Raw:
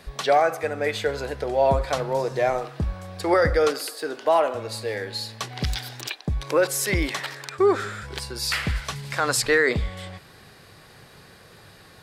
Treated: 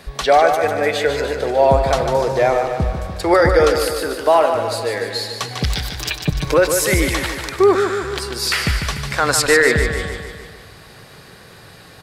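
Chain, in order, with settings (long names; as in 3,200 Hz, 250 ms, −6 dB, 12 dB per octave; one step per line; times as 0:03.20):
0:06.01–0:06.54: comb filter 6.6 ms, depth 84%
repeating echo 148 ms, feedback 57%, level −7 dB
level +6 dB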